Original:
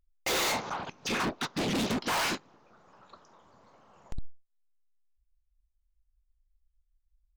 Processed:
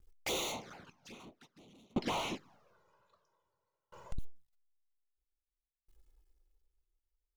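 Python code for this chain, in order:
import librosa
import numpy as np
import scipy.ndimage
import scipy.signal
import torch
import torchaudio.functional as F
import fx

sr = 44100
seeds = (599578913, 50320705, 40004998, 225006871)

y = fx.law_mismatch(x, sr, coded='mu')
y = fx.high_shelf(y, sr, hz=5300.0, db=-11.5, at=(1.93, 2.36))
y = fx.env_flanger(y, sr, rest_ms=2.5, full_db=-27.5)
y = fx.tremolo_decay(y, sr, direction='decaying', hz=0.51, depth_db=37)
y = y * librosa.db_to_amplitude(1.0)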